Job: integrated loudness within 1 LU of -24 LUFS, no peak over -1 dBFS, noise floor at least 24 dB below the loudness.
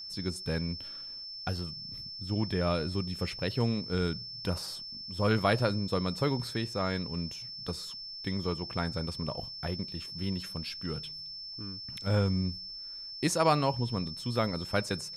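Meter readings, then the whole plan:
steady tone 5.3 kHz; tone level -40 dBFS; loudness -32.5 LUFS; peak level -12.5 dBFS; loudness target -24.0 LUFS
-> band-stop 5.3 kHz, Q 30; trim +8.5 dB

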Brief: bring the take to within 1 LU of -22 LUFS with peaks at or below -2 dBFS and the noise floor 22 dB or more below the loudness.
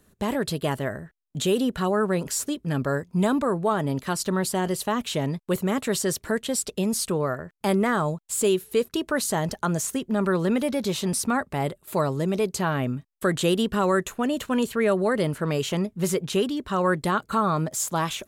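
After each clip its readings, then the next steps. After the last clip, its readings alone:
loudness -25.5 LUFS; peak level -12.0 dBFS; loudness target -22.0 LUFS
-> trim +3.5 dB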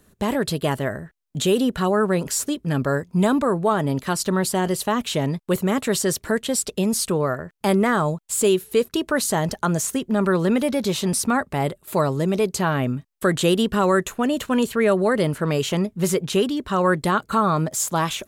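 loudness -22.0 LUFS; peak level -8.5 dBFS; noise floor -61 dBFS

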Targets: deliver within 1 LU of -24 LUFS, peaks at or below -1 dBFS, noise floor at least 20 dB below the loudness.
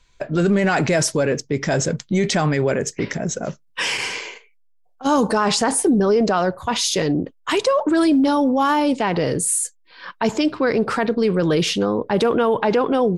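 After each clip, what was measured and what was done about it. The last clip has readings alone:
loudness -19.5 LUFS; peak level -5.0 dBFS; loudness target -24.0 LUFS
-> trim -4.5 dB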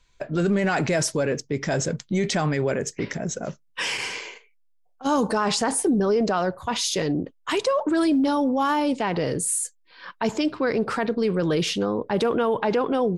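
loudness -24.0 LUFS; peak level -9.5 dBFS; noise floor -61 dBFS

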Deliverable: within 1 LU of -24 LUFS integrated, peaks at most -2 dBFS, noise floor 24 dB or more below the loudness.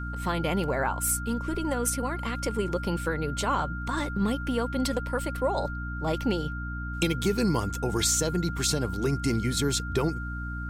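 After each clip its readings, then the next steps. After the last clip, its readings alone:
hum 60 Hz; highest harmonic 300 Hz; hum level -32 dBFS; steady tone 1.4 kHz; tone level -37 dBFS; loudness -28.0 LUFS; peak level -12.0 dBFS; loudness target -24.0 LUFS
-> hum notches 60/120/180/240/300 Hz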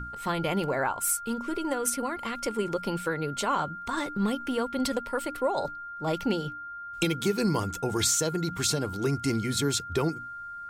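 hum not found; steady tone 1.4 kHz; tone level -37 dBFS
-> band-stop 1.4 kHz, Q 30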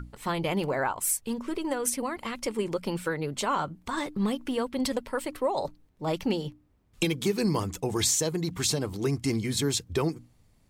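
steady tone not found; loudness -29.0 LUFS; peak level -13.0 dBFS; loudness target -24.0 LUFS
-> trim +5 dB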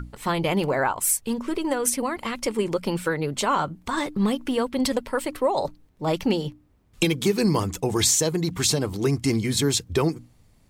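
loudness -24.0 LUFS; peak level -8.0 dBFS; noise floor -58 dBFS

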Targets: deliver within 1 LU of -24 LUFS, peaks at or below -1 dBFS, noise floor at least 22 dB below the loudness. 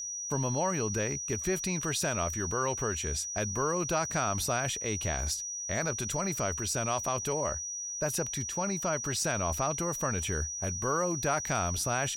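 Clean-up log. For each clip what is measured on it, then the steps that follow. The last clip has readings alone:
steady tone 5.8 kHz; tone level -35 dBFS; loudness -30.5 LUFS; peak level -17.0 dBFS; loudness target -24.0 LUFS
-> band-stop 5.8 kHz, Q 30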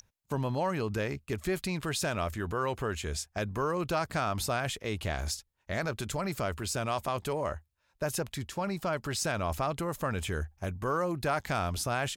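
steady tone not found; loudness -33.0 LUFS; peak level -18.0 dBFS; loudness target -24.0 LUFS
-> trim +9 dB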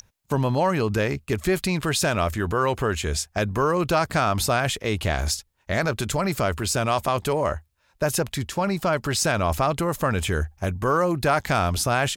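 loudness -24.0 LUFS; peak level -9.0 dBFS; noise floor -67 dBFS

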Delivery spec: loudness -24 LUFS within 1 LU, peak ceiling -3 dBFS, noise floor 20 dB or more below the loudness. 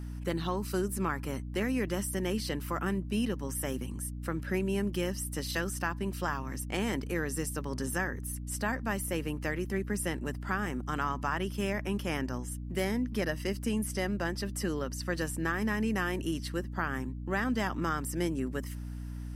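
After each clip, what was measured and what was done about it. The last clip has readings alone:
hum 60 Hz; highest harmonic 300 Hz; hum level -37 dBFS; loudness -33.5 LUFS; peak level -16.5 dBFS; loudness target -24.0 LUFS
-> hum notches 60/120/180/240/300 Hz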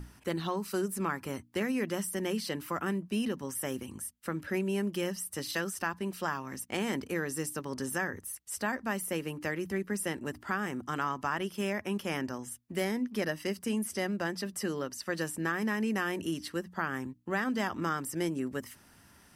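hum not found; loudness -34.0 LUFS; peak level -17.0 dBFS; loudness target -24.0 LUFS
-> trim +10 dB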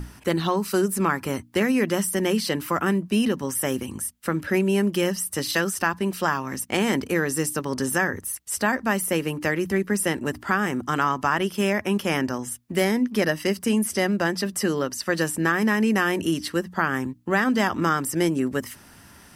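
loudness -24.0 LUFS; peak level -7.0 dBFS; noise floor -50 dBFS

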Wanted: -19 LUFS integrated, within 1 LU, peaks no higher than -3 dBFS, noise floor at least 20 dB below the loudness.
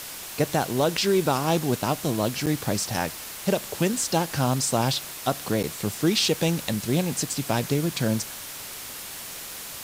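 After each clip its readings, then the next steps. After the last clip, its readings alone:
dropouts 2; longest dropout 7.8 ms; noise floor -38 dBFS; noise floor target -46 dBFS; loudness -25.5 LUFS; peak level -9.5 dBFS; loudness target -19.0 LUFS
-> interpolate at 2.46/5.63 s, 7.8 ms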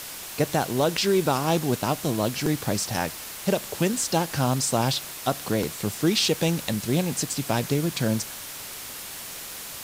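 dropouts 0; noise floor -38 dBFS; noise floor target -46 dBFS
-> noise reduction 8 dB, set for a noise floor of -38 dBFS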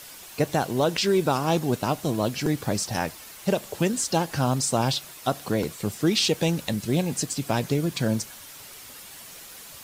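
noise floor -44 dBFS; noise floor target -46 dBFS
-> noise reduction 6 dB, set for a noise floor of -44 dBFS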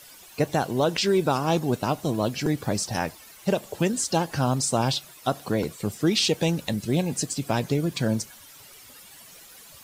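noise floor -48 dBFS; loudness -25.5 LUFS; peak level -10.5 dBFS; loudness target -19.0 LUFS
-> trim +6.5 dB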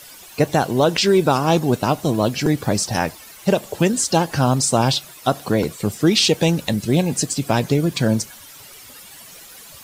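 loudness -19.0 LUFS; peak level -4.0 dBFS; noise floor -42 dBFS

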